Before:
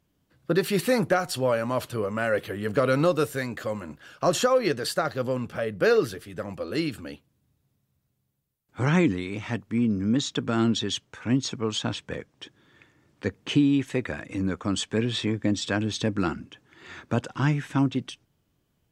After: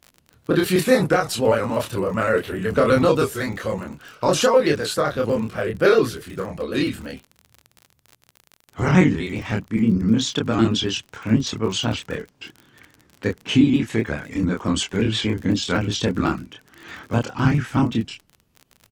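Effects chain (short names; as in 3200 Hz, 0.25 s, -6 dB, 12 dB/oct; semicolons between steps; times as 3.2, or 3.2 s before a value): trilling pitch shifter -2 st, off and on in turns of 63 ms; doubler 27 ms -2.5 dB; crackle 38/s -35 dBFS; gain +4 dB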